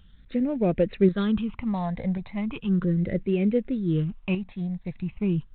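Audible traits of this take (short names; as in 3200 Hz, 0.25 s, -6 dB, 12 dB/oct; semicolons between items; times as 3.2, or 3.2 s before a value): a quantiser's noise floor 12-bit, dither none; tremolo saw up 0.92 Hz, depth 50%; phasing stages 8, 0.37 Hz, lowest notch 380–1100 Hz; G.726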